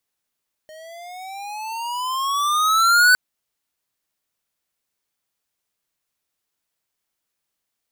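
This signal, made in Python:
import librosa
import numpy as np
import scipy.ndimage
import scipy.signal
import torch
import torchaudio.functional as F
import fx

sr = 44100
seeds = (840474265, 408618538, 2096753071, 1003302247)

y = fx.riser_tone(sr, length_s=2.46, level_db=-12, wave='square', hz=617.0, rise_st=15.5, swell_db=29.0)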